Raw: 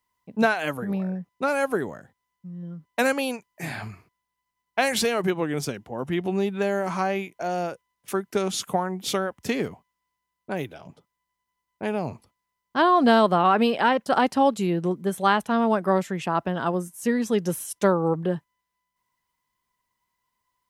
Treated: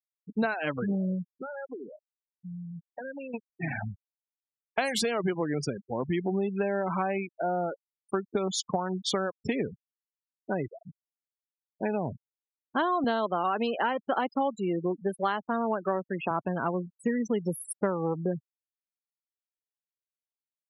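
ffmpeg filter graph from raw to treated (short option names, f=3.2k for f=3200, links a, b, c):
-filter_complex "[0:a]asettb=1/sr,asplit=3[a][b][c];[a]atrim=end=1.324[d];[b]atrim=start=1.32:end=3.34,asetpts=PTS-STARTPTS,afade=t=in:d=0.004:c=qsin,afade=t=out:st=2.016:d=0.004:c=qsin,highpass=f=46:p=1,acompressor=threshold=-34dB:ratio=12:attack=3.2:release=140:knee=1:detection=peak,lowshelf=f=160:g=-5.5[e];[c]atrim=start=3.336[f];[d][e]acrossfade=d=0.004:c1=hsin:c2=qsin[g];[g][f]acrossfade=d=0.004:c1=qsin:c2=hsin,asettb=1/sr,asplit=3[h][i][j];[h]atrim=end=13.044[k];[i]atrim=start=13.04:end=16.31,asetpts=PTS-STARTPTS,afade=t=in:d=0.004:c=qsin,afade=t=out:st=3.266:d=0.004:c=qsin,highpass=230,deesser=0.3[l];[j]atrim=start=16.306[m];[k][l]acrossfade=d=0.004:c1=hsin:c2=qsin[n];[n][m]acrossfade=d=0.004:c1=qsin:c2=hsin,afftfilt=real='re*gte(hypot(re,im),0.0447)':imag='im*gte(hypot(re,im),0.0447)':win_size=1024:overlap=0.75,acompressor=threshold=-27dB:ratio=4,volume=1.5dB"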